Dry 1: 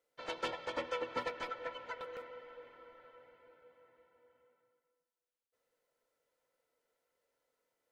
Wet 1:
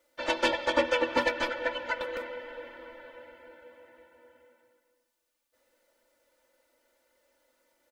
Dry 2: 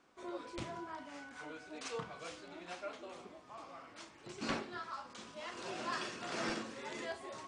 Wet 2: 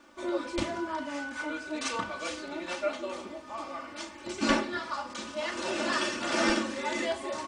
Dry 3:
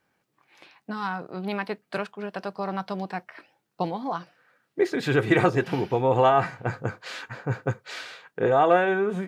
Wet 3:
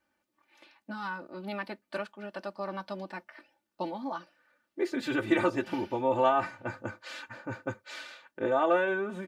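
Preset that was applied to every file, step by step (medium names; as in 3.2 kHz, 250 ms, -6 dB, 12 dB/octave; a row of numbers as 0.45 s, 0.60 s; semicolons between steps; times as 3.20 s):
comb 3.4 ms, depth 95%; peak normalisation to -12 dBFS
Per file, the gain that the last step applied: +10.0 dB, +9.0 dB, -8.5 dB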